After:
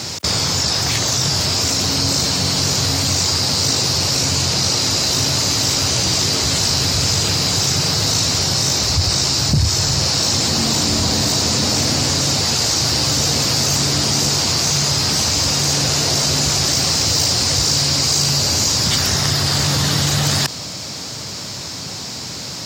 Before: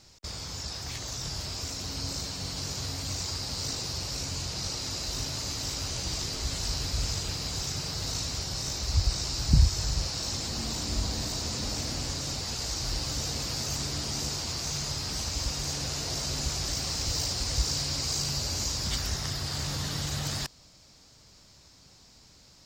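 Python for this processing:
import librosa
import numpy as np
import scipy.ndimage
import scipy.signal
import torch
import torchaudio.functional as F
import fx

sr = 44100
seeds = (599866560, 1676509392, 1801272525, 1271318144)

p1 = scipy.signal.sosfilt(scipy.signal.butter(4, 94.0, 'highpass', fs=sr, output='sos'), x)
p2 = fx.rider(p1, sr, range_db=10, speed_s=0.5)
p3 = p1 + (p2 * 10.0 ** (-2.5 / 20.0))
p4 = fx.fold_sine(p3, sr, drive_db=3, ceiling_db=-9.0)
y = fx.env_flatten(p4, sr, amount_pct=50)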